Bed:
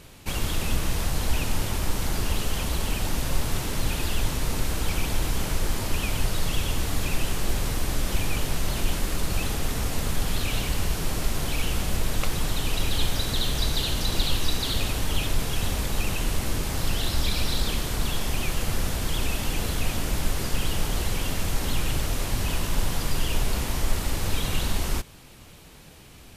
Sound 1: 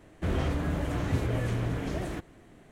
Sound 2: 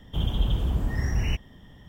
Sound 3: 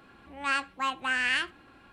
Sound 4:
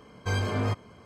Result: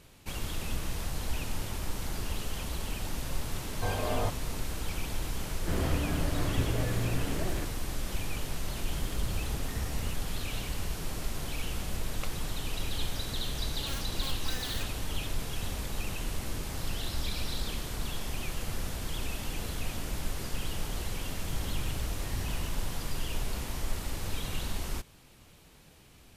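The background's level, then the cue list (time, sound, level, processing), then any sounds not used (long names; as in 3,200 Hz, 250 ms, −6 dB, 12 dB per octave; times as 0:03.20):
bed −8.5 dB
0:03.56: mix in 4 −9.5 dB + parametric band 690 Hz +13.5 dB 1.3 octaves
0:05.45: mix in 1 −2 dB
0:08.78: mix in 2 −12 dB
0:13.41: mix in 3 −13 dB + wrap-around overflow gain 23.5 dB
0:21.33: mix in 2 −14 dB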